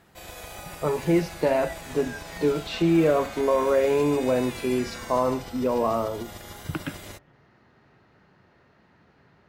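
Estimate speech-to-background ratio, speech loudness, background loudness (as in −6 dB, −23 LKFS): 14.0 dB, −25.0 LKFS, −39.0 LKFS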